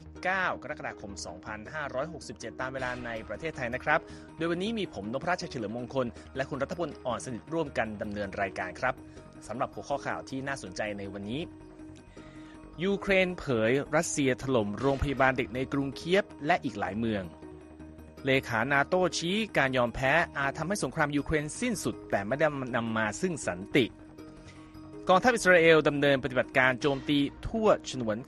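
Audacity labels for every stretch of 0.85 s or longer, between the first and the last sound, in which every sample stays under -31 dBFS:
11.440000	12.800000	silence
17.230000	18.250000	silence
23.860000	25.070000	silence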